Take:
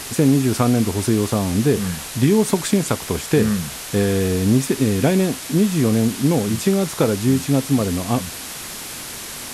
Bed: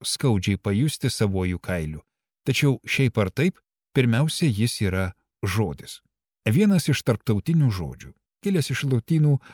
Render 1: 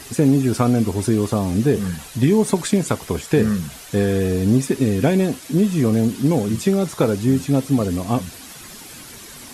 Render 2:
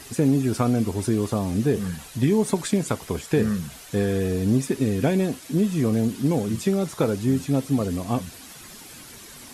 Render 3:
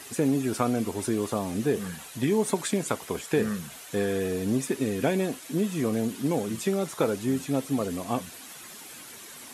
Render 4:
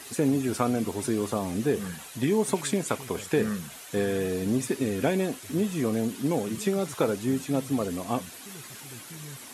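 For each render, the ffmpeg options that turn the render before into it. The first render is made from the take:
ffmpeg -i in.wav -af "afftdn=noise_reduction=10:noise_floor=-32" out.wav
ffmpeg -i in.wav -af "volume=-4.5dB" out.wav
ffmpeg -i in.wav -af "highpass=frequency=360:poles=1,equalizer=frequency=4900:width=2.4:gain=-3.5" out.wav
ffmpeg -i in.wav -i bed.wav -filter_complex "[1:a]volume=-24.5dB[link_01];[0:a][link_01]amix=inputs=2:normalize=0" out.wav

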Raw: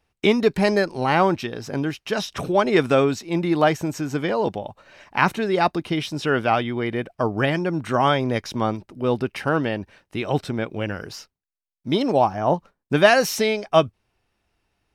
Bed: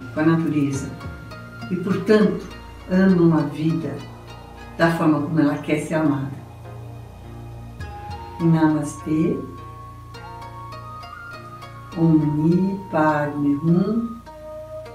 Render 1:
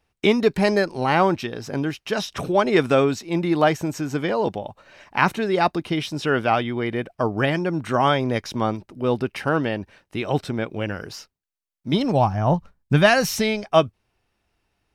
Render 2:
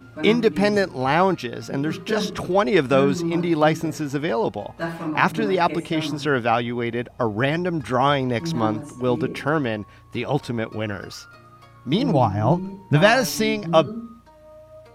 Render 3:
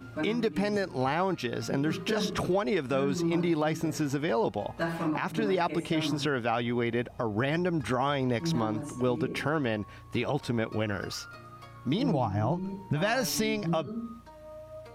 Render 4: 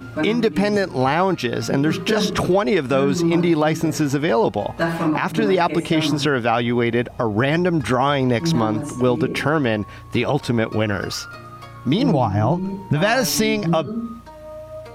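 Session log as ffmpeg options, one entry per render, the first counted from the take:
ffmpeg -i in.wav -filter_complex "[0:a]asplit=3[link_01][link_02][link_03];[link_01]afade=type=out:start_time=11.92:duration=0.02[link_04];[link_02]asubboost=boost=5:cutoff=150,afade=type=in:start_time=11.92:duration=0.02,afade=type=out:start_time=13.64:duration=0.02[link_05];[link_03]afade=type=in:start_time=13.64:duration=0.02[link_06];[link_04][link_05][link_06]amix=inputs=3:normalize=0" out.wav
ffmpeg -i in.wav -i bed.wav -filter_complex "[1:a]volume=-10.5dB[link_01];[0:a][link_01]amix=inputs=2:normalize=0" out.wav
ffmpeg -i in.wav -af "acompressor=threshold=-27dB:ratio=2,alimiter=limit=-18dB:level=0:latency=1:release=116" out.wav
ffmpeg -i in.wav -af "volume=10dB" out.wav

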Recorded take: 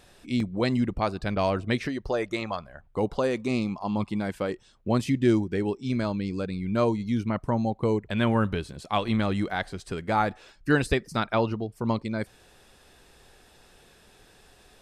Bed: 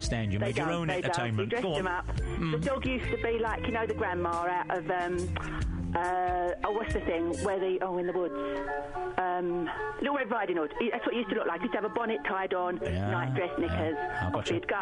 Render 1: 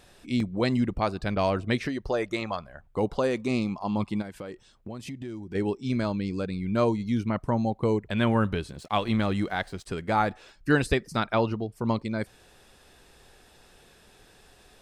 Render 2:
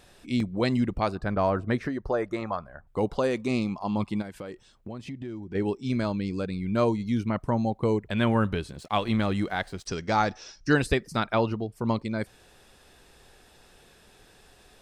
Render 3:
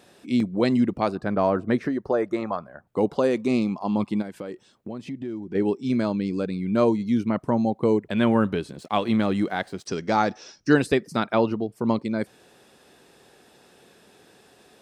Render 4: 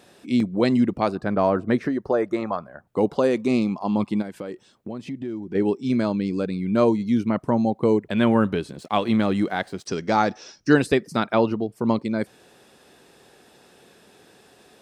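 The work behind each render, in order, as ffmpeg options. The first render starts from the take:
ffmpeg -i in.wav -filter_complex "[0:a]asplit=3[link_01][link_02][link_03];[link_01]afade=type=out:start_time=4.21:duration=0.02[link_04];[link_02]acompressor=threshold=-35dB:ratio=5:attack=3.2:release=140:knee=1:detection=peak,afade=type=in:start_time=4.21:duration=0.02,afade=type=out:start_time=5.54:duration=0.02[link_05];[link_03]afade=type=in:start_time=5.54:duration=0.02[link_06];[link_04][link_05][link_06]amix=inputs=3:normalize=0,asettb=1/sr,asplit=3[link_07][link_08][link_09];[link_07]atrim=end=8.754[link_10];[link_08]atrim=start=8.75:end=9.86,asetpts=PTS-STARTPTS,afade=type=in:duration=0.004:curve=qsin,afade=type=out:start_time=1.106:duration=0.004:curve=qsin,aeval=exprs='sgn(val(0))*max(abs(val(0))-0.0015,0)':channel_layout=same[link_11];[link_09]atrim=start=9.856[link_12];[link_10][link_11]acrossfade=duration=0.004:curve1=hsin:curve2=qsin[link_13];[link_13][link_12]acrossfade=duration=0.004:curve1=qsin:curve2=hsin" out.wav
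ffmpeg -i in.wav -filter_complex "[0:a]asettb=1/sr,asplit=3[link_01][link_02][link_03];[link_01]atrim=end=1.154[link_04];[link_02]atrim=start=1.15:end=2.87,asetpts=PTS-STARTPTS,afade=type=in:duration=0.004:curve=qsin,afade=type=out:start_time=1.716:duration=0.004:curve=qsin,highshelf=frequency=2000:width_type=q:width=1.5:gain=-8[link_05];[link_03]atrim=start=2.866[link_06];[link_04][link_05]acrossfade=duration=0.004:curve1=hsin:curve2=qsin[link_07];[link_07][link_06]acrossfade=duration=0.004:curve1=qsin:curve2=hsin,asettb=1/sr,asplit=3[link_08][link_09][link_10];[link_08]atrim=end=4.934[link_11];[link_09]atrim=start=4.93:end=5.62,asetpts=PTS-STARTPTS,afade=type=in:duration=0.004:curve=qsin,afade=type=out:start_time=0.686:duration=0.004:curve=qsin,aemphasis=mode=reproduction:type=50fm[link_12];[link_10]atrim=start=5.616[link_13];[link_11][link_12]acrossfade=duration=0.004:curve1=hsin:curve2=qsin[link_14];[link_14][link_13]acrossfade=duration=0.004:curve1=qsin:curve2=hsin,asettb=1/sr,asplit=3[link_15][link_16][link_17];[link_15]atrim=end=9.874[link_18];[link_16]atrim=start=9.87:end=10.74,asetpts=PTS-STARTPTS,afade=type=in:duration=0.004:curve=qsin,afade=type=out:start_time=0.866:duration=0.004:curve=qsin,lowpass=frequency=5700:width_type=q:width=13[link_19];[link_17]atrim=start=10.736[link_20];[link_18][link_19]acrossfade=duration=0.004:curve1=hsin:curve2=qsin[link_21];[link_21][link_20]acrossfade=duration=0.004:curve1=qsin:curve2=hsin" out.wav
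ffmpeg -i in.wav -af "highpass=220,lowshelf=frequency=450:gain=9.5" out.wav
ffmpeg -i in.wav -af "volume=1.5dB" out.wav

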